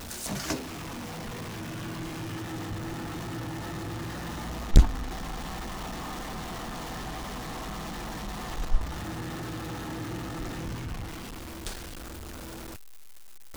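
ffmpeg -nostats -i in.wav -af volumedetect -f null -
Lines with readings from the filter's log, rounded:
mean_volume: -30.9 dB
max_volume: -7.0 dB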